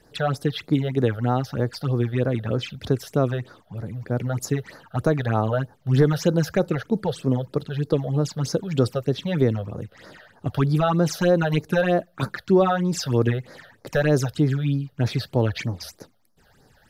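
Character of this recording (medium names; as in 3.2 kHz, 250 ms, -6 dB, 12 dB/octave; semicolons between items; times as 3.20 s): phasing stages 8, 3.2 Hz, lowest notch 280–3000 Hz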